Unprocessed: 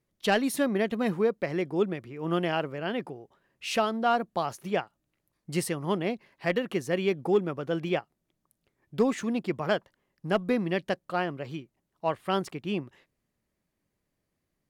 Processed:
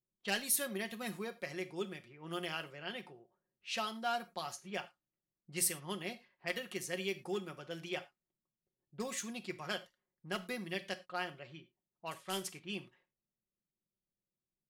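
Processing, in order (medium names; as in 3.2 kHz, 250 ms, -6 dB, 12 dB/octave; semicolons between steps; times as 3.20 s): 12.11–12.62 s: CVSD coder 64 kbps; level-controlled noise filter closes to 490 Hz, open at -25.5 dBFS; pre-emphasis filter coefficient 0.9; comb 5.5 ms, depth 45%; reverberation, pre-delay 3 ms, DRR 10.5 dB; trim +2.5 dB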